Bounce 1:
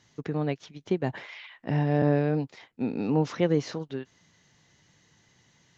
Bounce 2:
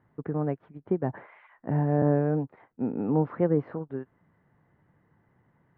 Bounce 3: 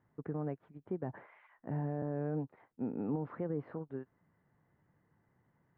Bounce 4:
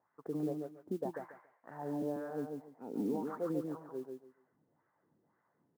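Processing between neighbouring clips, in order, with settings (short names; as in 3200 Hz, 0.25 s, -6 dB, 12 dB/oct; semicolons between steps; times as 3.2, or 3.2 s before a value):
LPF 1500 Hz 24 dB/oct
limiter -20 dBFS, peak gain reduction 8 dB; gain -7.5 dB
wah 1.9 Hz 260–1400 Hz, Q 2.5; feedback echo 0.141 s, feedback 21%, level -4.5 dB; modulation noise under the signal 29 dB; gain +5.5 dB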